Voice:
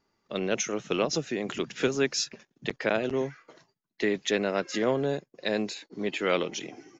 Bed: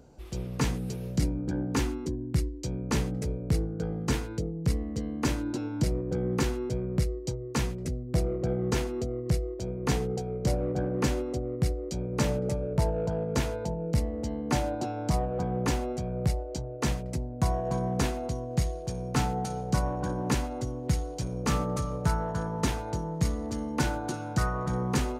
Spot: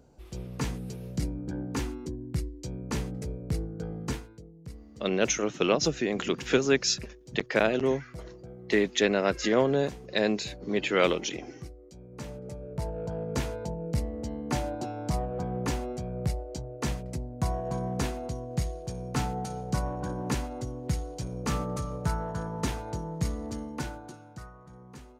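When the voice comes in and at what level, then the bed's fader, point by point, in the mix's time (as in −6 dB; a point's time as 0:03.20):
4.70 s, +2.5 dB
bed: 0:04.09 −4 dB
0:04.36 −16.5 dB
0:11.94 −16.5 dB
0:13.29 −2.5 dB
0:23.53 −2.5 dB
0:24.60 −20.5 dB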